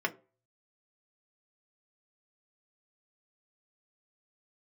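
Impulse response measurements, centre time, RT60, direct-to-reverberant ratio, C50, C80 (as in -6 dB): 5 ms, 0.35 s, 0.5 dB, 20.5 dB, 24.5 dB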